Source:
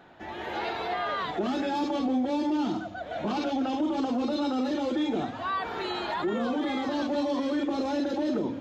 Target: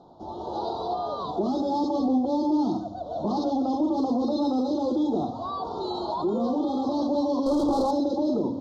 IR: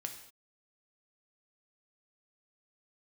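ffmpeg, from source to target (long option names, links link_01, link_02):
-filter_complex "[0:a]lowpass=frequency=5800:width=0.5412,lowpass=frequency=5800:width=1.3066,asettb=1/sr,asplit=3[link_01][link_02][link_03];[link_01]atrim=end=7.464[link_04];[link_02]atrim=start=7.46:end=7.91,asetpts=PTS-STARTPTS,afade=type=in:duration=0.004:curve=qsin,afade=type=out:start_time=0.446:duration=0.004:curve=qsin,asplit=2[link_05][link_06];[link_06]highpass=frequency=720:poles=1,volume=26dB,asoftclip=type=tanh:threshold=-20dB[link_07];[link_05][link_07]amix=inputs=2:normalize=0,lowpass=frequency=2100:poles=1,volume=-6dB[link_08];[link_03]atrim=start=7.906[link_09];[link_04][link_08]acrossfade=duration=0.004:curve1=hsin:curve2=qsin[link_10];[link_10][link_09]acrossfade=duration=0.004:curve1=qsin:curve2=hsin,asuperstop=centerf=2100:order=8:qfactor=0.7,asplit=2[link_11][link_12];[1:a]atrim=start_sample=2205,adelay=73[link_13];[link_12][link_13]afir=irnorm=-1:irlink=0,volume=-13dB[link_14];[link_11][link_14]amix=inputs=2:normalize=0,volume=3dB"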